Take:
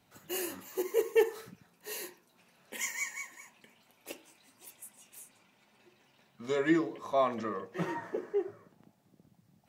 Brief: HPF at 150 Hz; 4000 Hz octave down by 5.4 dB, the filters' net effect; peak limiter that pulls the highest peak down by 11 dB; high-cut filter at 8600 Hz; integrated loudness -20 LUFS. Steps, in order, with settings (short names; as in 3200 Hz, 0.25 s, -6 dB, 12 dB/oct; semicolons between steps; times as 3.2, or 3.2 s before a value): HPF 150 Hz; LPF 8600 Hz; bell 4000 Hz -8 dB; gain +18.5 dB; limiter -7.5 dBFS